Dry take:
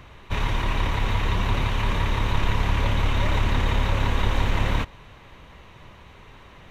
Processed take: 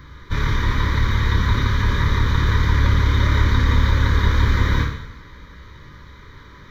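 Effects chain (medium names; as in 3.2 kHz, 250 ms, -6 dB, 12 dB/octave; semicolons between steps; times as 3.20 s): static phaser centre 2.7 kHz, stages 6; two-slope reverb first 0.8 s, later 2.8 s, from -25 dB, DRR -0.5 dB; trim +4 dB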